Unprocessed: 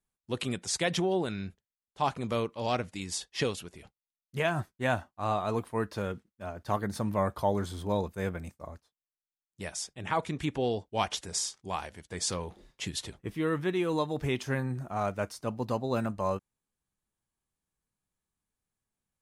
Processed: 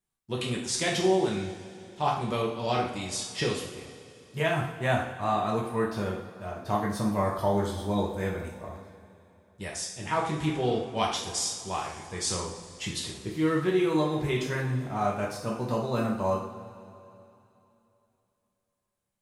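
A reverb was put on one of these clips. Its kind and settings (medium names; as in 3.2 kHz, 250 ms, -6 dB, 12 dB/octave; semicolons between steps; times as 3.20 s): two-slope reverb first 0.58 s, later 3.1 s, from -16 dB, DRR -2.5 dB; trim -1.5 dB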